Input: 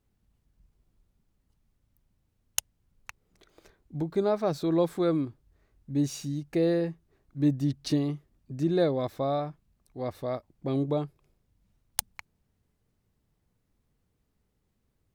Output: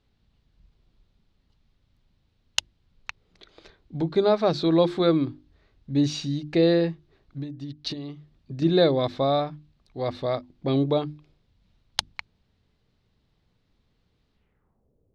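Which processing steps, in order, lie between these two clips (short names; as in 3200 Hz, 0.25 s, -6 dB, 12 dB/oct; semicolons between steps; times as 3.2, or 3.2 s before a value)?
7.38–8.62 compressor 16:1, threshold -36 dBFS, peak gain reduction 18 dB; notches 50/100/150/200/250/300/350 Hz; low-pass sweep 4000 Hz -> 500 Hz, 14.34–14.91; gain +5.5 dB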